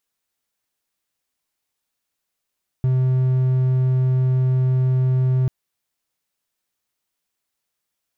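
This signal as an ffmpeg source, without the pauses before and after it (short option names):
-f lavfi -i "aevalsrc='0.224*(1-4*abs(mod(129*t+0.25,1)-0.5))':d=2.64:s=44100"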